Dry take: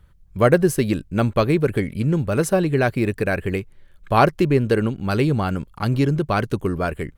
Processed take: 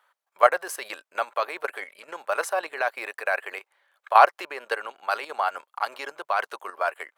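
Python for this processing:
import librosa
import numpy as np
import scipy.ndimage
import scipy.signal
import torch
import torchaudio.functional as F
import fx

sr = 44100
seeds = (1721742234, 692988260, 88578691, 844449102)

y = scipy.signal.sosfilt(scipy.signal.butter(4, 680.0, 'highpass', fs=sr, output='sos'), x)
y = fx.peak_eq(y, sr, hz=900.0, db=9.0, octaves=2.4)
y = fx.level_steps(y, sr, step_db=11)
y = y * 10.0 ** (-1.0 / 20.0)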